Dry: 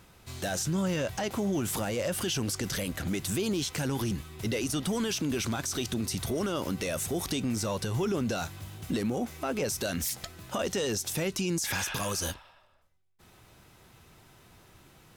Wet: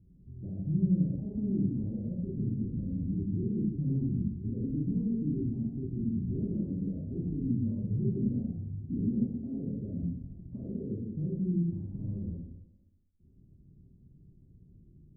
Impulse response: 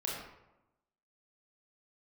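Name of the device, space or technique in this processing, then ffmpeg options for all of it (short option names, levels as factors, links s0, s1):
next room: -filter_complex "[0:a]lowpass=f=260:w=0.5412,lowpass=f=260:w=1.3066[s0];[1:a]atrim=start_sample=2205[s1];[s0][s1]afir=irnorm=-1:irlink=0"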